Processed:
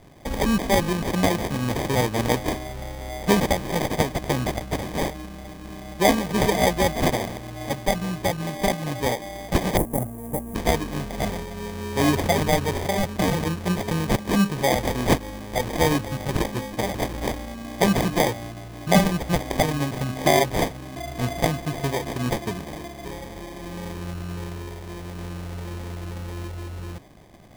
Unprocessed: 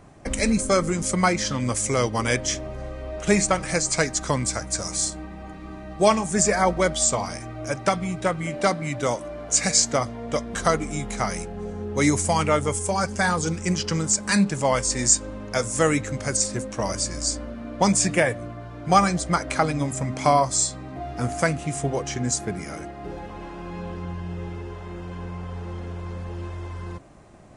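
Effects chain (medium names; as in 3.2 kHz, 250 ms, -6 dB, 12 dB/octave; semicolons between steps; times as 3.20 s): sample-and-hold 32×; 9.77–10.55 s: FFT filter 280 Hz 0 dB, 1 kHz -7 dB, 4.5 kHz -28 dB, 10 kHz +6 dB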